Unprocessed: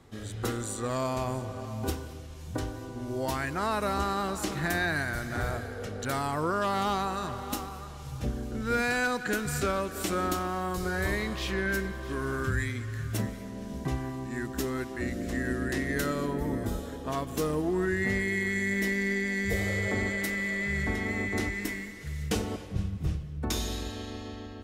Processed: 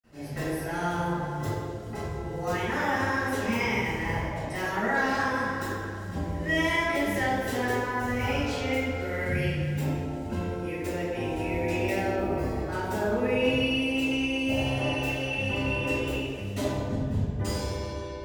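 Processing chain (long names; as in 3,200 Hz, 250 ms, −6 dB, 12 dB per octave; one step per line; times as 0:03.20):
convolution reverb RT60 2.5 s, pre-delay 47 ms
wrong playback speed 33 rpm record played at 45 rpm
level +7.5 dB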